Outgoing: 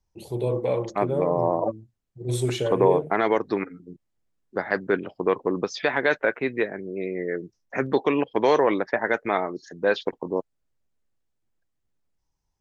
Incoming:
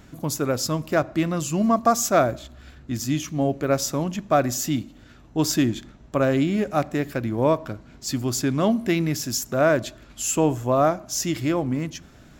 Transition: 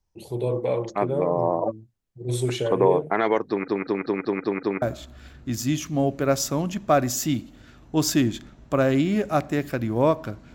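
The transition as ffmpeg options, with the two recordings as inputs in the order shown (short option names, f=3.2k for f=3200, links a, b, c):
-filter_complex "[0:a]apad=whole_dur=10.54,atrim=end=10.54,asplit=7[a][b][c][d][e][f][g];[a]atrim=end=3.682[h];[b]atrim=start=3.488:end=3.682[i];[c]atrim=start=3.488:end=3.682[j];[d]atrim=start=3.488:end=3.682[k];[e]atrim=start=3.488:end=3.682[l];[f]atrim=start=3.488:end=3.682[m];[g]atrim=start=3.488:end=3.682[n];[1:a]atrim=start=2.238:end=7.96[o];[h][i]acrossfade=d=0.004:c1=hsin:c2=hsin[p];[p][j]acrossfade=d=0.004:c1=hsin:c2=hsin[q];[q][k]acrossfade=d=0.004:c1=hsin:c2=hsin[r];[r][l]acrossfade=d=0.004:c1=hsin:c2=hsin[s];[s][m]acrossfade=d=0.004:c1=hsin:c2=hsin[t];[t][n]acrossfade=d=0.004:c1=hsin:c2=hsin[u];[u][o]acrossfade=d=0.004:c1=hsin:c2=hsin"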